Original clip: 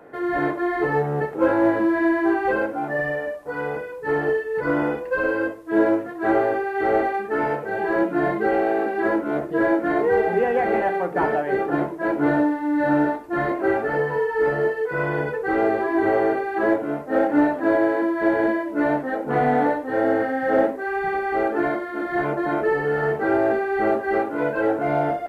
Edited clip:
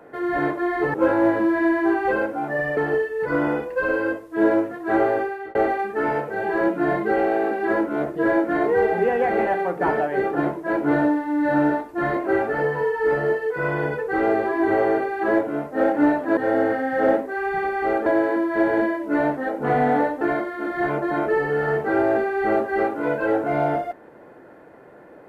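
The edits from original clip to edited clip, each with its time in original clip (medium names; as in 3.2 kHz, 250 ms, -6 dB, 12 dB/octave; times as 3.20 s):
0.94–1.34 s: delete
3.17–4.12 s: delete
6.57–6.90 s: fade out
19.87–21.56 s: move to 17.72 s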